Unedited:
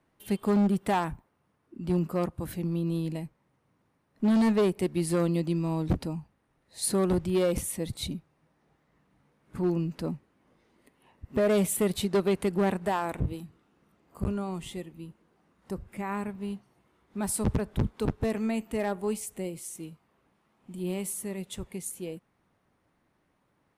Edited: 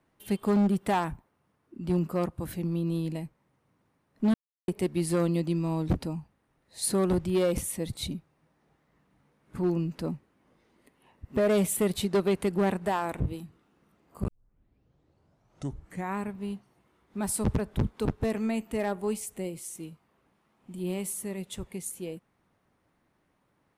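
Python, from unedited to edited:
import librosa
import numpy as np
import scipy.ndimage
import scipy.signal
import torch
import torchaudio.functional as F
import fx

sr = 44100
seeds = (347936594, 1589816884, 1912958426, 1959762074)

y = fx.edit(x, sr, fx.silence(start_s=4.34, length_s=0.34),
    fx.tape_start(start_s=14.28, length_s=1.89), tone=tone)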